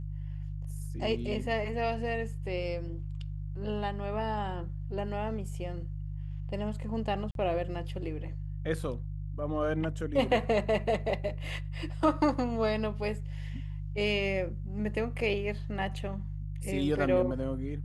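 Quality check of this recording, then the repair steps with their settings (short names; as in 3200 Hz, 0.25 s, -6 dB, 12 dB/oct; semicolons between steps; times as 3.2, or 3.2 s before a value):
hum 50 Hz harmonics 3 -37 dBFS
7.31–7.35 gap 42 ms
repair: de-hum 50 Hz, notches 3; interpolate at 7.31, 42 ms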